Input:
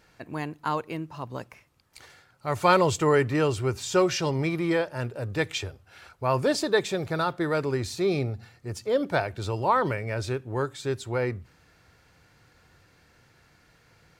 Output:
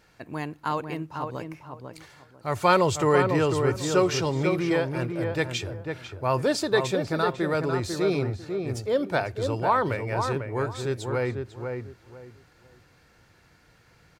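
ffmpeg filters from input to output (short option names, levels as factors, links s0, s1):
-filter_complex "[0:a]asplit=2[s0][s1];[s1]adelay=497,lowpass=f=1600:p=1,volume=0.562,asplit=2[s2][s3];[s3]adelay=497,lowpass=f=1600:p=1,volume=0.24,asplit=2[s4][s5];[s5]adelay=497,lowpass=f=1600:p=1,volume=0.24[s6];[s0][s2][s4][s6]amix=inputs=4:normalize=0"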